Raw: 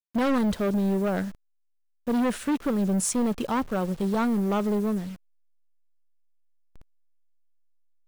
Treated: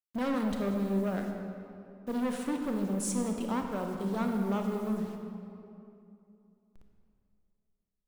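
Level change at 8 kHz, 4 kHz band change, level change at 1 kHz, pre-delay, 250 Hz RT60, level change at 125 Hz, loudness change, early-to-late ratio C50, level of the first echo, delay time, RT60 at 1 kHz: -7.5 dB, -7.0 dB, -6.5 dB, 25 ms, 3.1 s, -6.0 dB, -6.5 dB, 4.0 dB, none, none, 2.6 s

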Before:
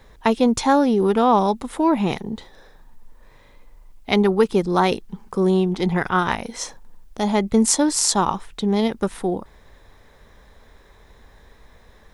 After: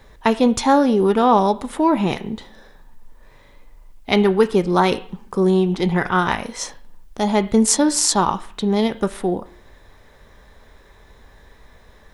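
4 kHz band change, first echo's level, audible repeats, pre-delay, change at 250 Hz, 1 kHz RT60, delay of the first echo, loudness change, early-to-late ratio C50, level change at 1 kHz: +1.5 dB, none, none, 3 ms, +1.5 dB, 0.55 s, none, +1.5 dB, 16.5 dB, +2.0 dB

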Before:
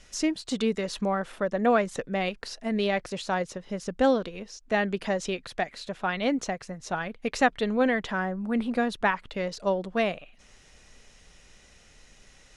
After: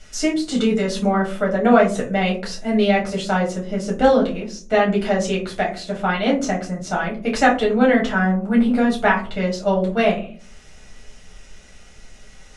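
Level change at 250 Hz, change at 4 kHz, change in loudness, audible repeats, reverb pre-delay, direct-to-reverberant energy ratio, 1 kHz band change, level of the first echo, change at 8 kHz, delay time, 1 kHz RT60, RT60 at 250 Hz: +10.0 dB, +7.0 dB, +8.5 dB, none, 5 ms, -3.5 dB, +8.0 dB, none, +6.5 dB, none, 0.35 s, 0.70 s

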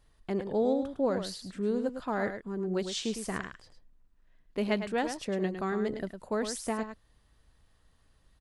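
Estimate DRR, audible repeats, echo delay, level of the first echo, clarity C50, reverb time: none, 1, 0.106 s, -8.5 dB, none, none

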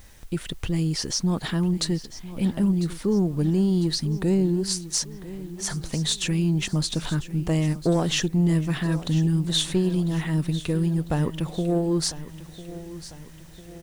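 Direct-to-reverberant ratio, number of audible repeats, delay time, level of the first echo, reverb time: none, 4, 0.999 s, -15.5 dB, none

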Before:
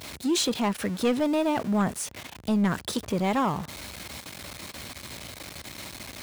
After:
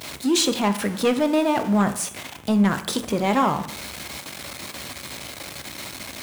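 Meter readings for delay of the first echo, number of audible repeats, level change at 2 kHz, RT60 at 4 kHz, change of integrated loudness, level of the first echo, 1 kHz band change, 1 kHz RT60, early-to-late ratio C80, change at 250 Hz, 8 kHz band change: none, none, +5.5 dB, 0.60 s, +4.0 dB, none, +5.5 dB, 0.65 s, 15.0 dB, +4.5 dB, +5.5 dB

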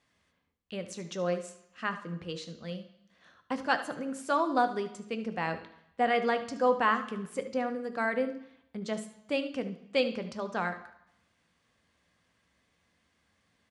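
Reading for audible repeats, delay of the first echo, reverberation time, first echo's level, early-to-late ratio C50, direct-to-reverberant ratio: 1, 74 ms, 0.75 s, -14.0 dB, 11.0 dB, 8.0 dB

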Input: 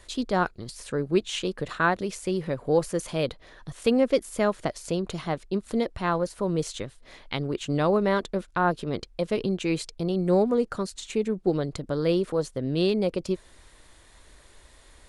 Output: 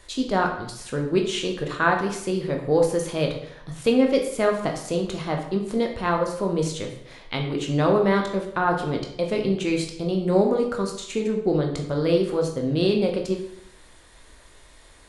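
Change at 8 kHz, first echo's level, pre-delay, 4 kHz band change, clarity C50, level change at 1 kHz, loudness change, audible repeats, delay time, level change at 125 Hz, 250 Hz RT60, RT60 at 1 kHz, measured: +2.5 dB, none, 14 ms, +3.0 dB, 6.5 dB, +3.0 dB, +3.0 dB, none, none, +3.5 dB, 0.75 s, 0.70 s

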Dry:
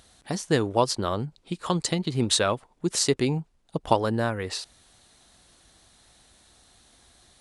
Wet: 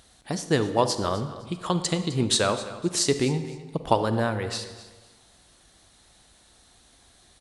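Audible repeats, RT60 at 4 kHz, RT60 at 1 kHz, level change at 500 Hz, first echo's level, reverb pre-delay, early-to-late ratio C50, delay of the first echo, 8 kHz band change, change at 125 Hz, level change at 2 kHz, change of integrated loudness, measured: 2, 1.0 s, 1.3 s, +0.5 dB, -17.0 dB, 33 ms, 10.0 dB, 0.256 s, +0.5 dB, +0.5 dB, +0.5 dB, +0.5 dB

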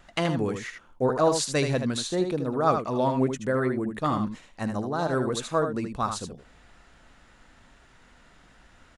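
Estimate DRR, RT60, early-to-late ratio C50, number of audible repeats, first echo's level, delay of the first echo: none, none, none, 1, -7.0 dB, 77 ms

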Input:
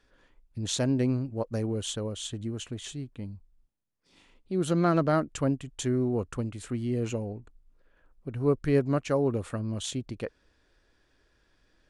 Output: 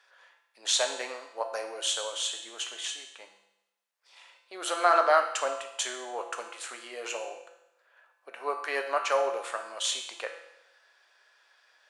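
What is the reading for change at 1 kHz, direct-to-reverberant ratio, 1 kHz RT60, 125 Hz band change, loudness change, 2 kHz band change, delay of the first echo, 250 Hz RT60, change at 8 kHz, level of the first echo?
+8.0 dB, 4.0 dB, 0.85 s, under -40 dB, 0.0 dB, +8.5 dB, none, 0.85 s, +6.0 dB, none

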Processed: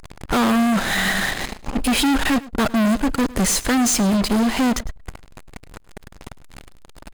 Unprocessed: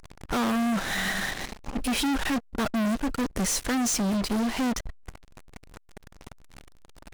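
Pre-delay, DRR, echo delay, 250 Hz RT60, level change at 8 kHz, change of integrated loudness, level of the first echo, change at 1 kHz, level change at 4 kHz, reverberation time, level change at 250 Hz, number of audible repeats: none, none, 0.105 s, none, +7.0 dB, +8.0 dB, -19.5 dB, +8.0 dB, +7.5 dB, none, +8.0 dB, 1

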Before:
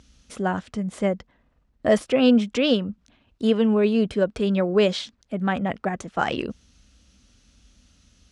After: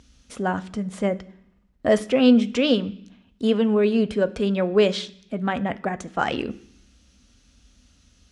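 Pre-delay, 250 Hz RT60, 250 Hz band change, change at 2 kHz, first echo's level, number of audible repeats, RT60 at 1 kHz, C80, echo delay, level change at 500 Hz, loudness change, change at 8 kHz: 3 ms, 0.95 s, +0.5 dB, 0.0 dB, none, none, 0.70 s, 21.5 dB, none, +0.5 dB, +0.5 dB, n/a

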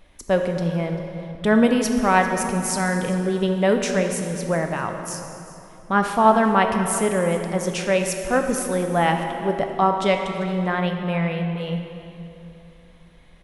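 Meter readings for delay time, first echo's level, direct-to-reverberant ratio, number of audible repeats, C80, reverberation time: 0.393 s, -18.5 dB, 4.0 dB, 1, 6.0 dB, 3.0 s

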